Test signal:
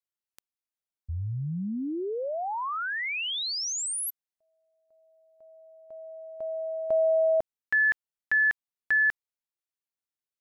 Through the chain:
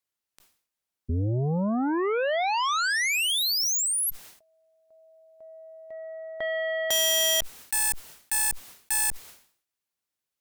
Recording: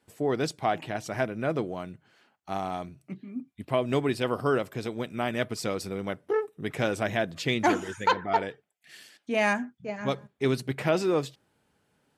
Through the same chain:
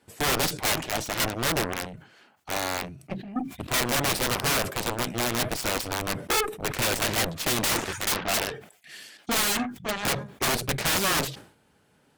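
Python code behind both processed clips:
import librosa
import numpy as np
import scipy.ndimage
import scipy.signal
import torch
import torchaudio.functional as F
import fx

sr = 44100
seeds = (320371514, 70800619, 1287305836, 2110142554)

y = (np.mod(10.0 ** (24.0 / 20.0) * x + 1.0, 2.0) - 1.0) / 10.0 ** (24.0 / 20.0)
y = fx.cheby_harmonics(y, sr, harmonics=(2, 3, 5, 7), levels_db=(-20, -18, -24, -10), full_scale_db=-24.0)
y = fx.sustainer(y, sr, db_per_s=110.0)
y = y * librosa.db_to_amplitude(4.5)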